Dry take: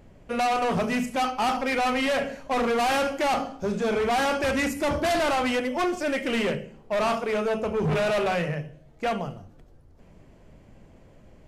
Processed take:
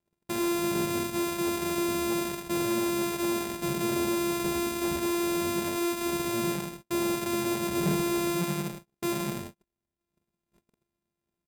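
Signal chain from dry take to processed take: sorted samples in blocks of 128 samples; compression, threshold -29 dBFS, peak gain reduction 7 dB; peak limiter -31 dBFS, peak gain reduction 9 dB; high-pass 81 Hz 12 dB/octave; bass shelf 190 Hz +3.5 dB; hum notches 60/120 Hz; comb 5 ms, depth 47%; gate -46 dBFS, range -39 dB; graphic EQ with 31 bands 1.25 kHz -6 dB, 8 kHz +5 dB, 12.5 kHz +8 dB; crackling interface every 0.90 s, samples 2048, repeat, from 0.75 s; trim +6 dB

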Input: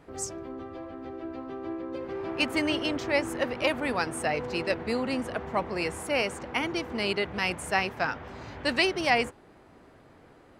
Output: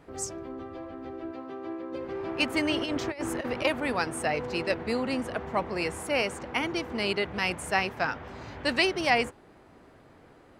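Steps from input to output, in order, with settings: 1.31–1.93 s: high-pass 220 Hz 6 dB/octave; 2.75–3.65 s: compressor with a negative ratio -30 dBFS, ratio -0.5

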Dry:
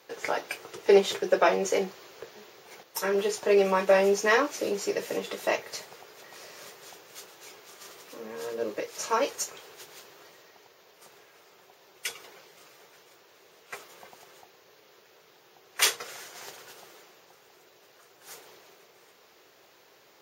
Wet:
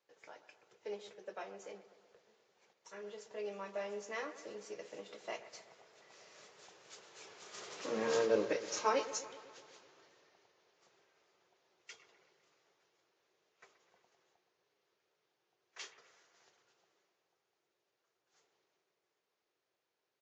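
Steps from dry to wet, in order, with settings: Doppler pass-by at 8.04 s, 12 m/s, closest 2.9 m; bucket-brigade echo 126 ms, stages 2048, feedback 62%, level -14 dB; resampled via 16 kHz; trim +5 dB

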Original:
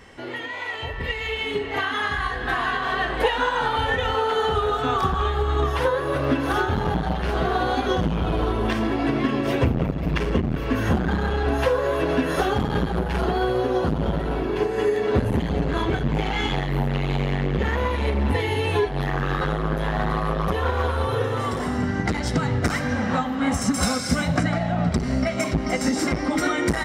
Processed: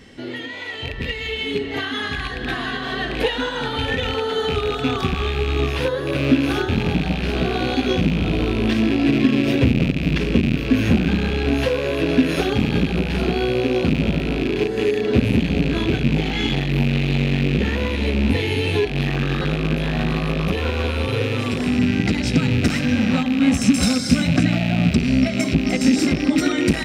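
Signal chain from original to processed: rattle on loud lows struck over -29 dBFS, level -18 dBFS; graphic EQ 125/250/1000/4000 Hz +3/+8/-8/+6 dB

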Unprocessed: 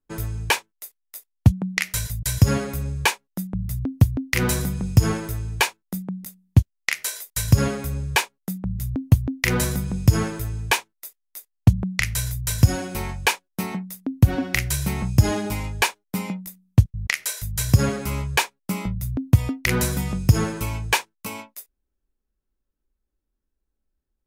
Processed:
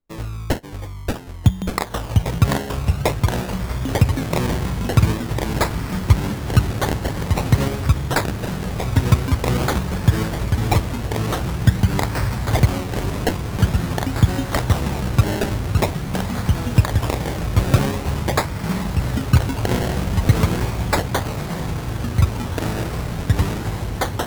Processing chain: echo that smears into a reverb 1663 ms, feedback 70%, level -9.5 dB; decimation with a swept rate 25×, swing 100% 0.47 Hz; ever faster or slower copies 521 ms, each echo -2 st, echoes 2

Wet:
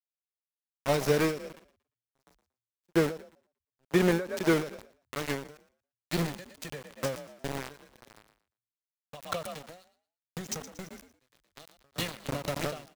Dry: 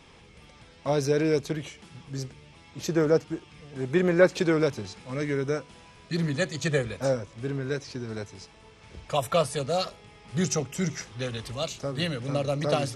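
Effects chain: small samples zeroed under -25.5 dBFS; frequency-shifting echo 116 ms, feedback 41%, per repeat +38 Hz, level -18 dB; endings held to a fixed fall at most 120 dB/s

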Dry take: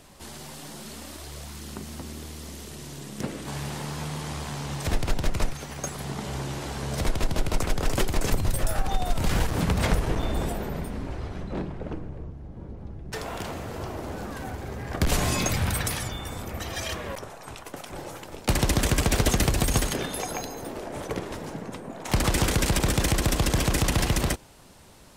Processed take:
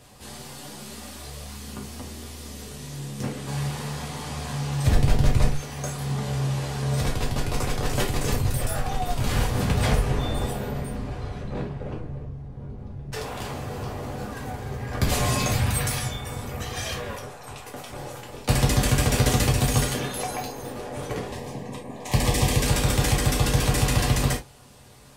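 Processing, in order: 4.83–5.55 s: bass shelf 330 Hz +8 dB; 21.26–22.63 s: Butterworth band-stop 1.4 kHz, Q 3.2; gated-style reverb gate 100 ms falling, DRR -2 dB; trim -3 dB

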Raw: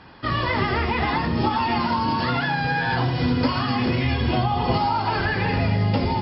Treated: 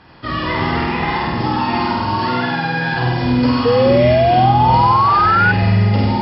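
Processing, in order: 2.15–2.94 s: high-pass 140 Hz 24 dB/octave; flutter echo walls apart 8.3 m, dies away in 1.3 s; 3.65–5.52 s: painted sound rise 470–1500 Hz -13 dBFS

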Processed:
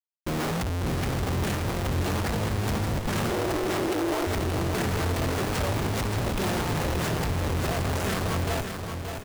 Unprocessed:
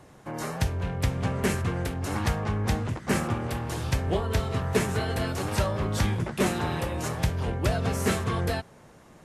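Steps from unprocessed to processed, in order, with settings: Schmitt trigger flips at -35 dBFS; 3.30–4.27 s: frequency shift +250 Hz; on a send: feedback delay 576 ms, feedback 46%, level -6.5 dB

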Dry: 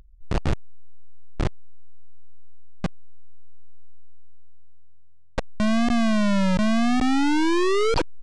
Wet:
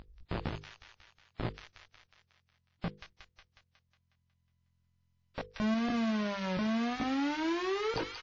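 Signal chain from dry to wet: treble shelf 5.2 kHz +5.5 dB; doubling 18 ms -5.5 dB; saturation -16.5 dBFS, distortion -13 dB; compression 8:1, threshold -30 dBFS, peak gain reduction 11 dB; feedback echo behind a high-pass 182 ms, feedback 56%, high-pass 1.9 kHz, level -4.5 dB; peak limiter -29 dBFS, peak gain reduction 10.5 dB; high-pass 93 Hz 6 dB/octave; distance through air 120 m; hum notches 50/100/150/200/250/300/350/400/450/500 Hz; trim +5.5 dB; WMA 32 kbps 16 kHz

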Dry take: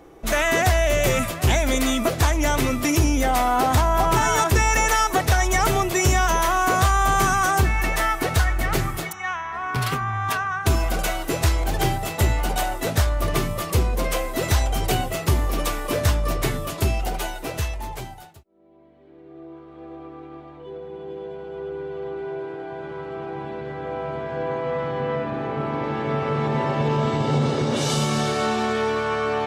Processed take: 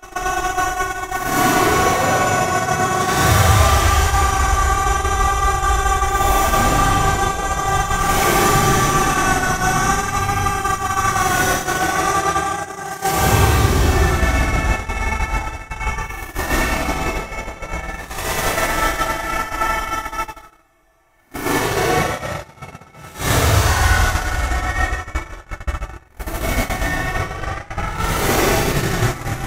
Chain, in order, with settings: spectral levelling over time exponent 0.6; Paulstretch 13×, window 0.05 s, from 6.57 s; gate -16 dBFS, range -35 dB

